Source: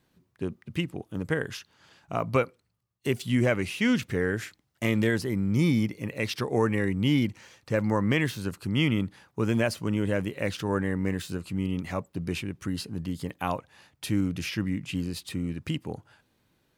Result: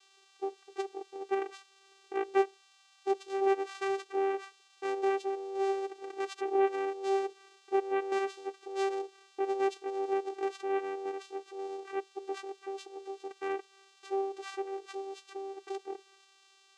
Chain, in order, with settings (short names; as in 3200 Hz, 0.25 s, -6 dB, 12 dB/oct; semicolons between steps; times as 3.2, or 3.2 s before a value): low-pass opened by the level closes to 2400 Hz; band noise 2500–5300 Hz -53 dBFS; vocoder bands 4, saw 390 Hz; gain -5.5 dB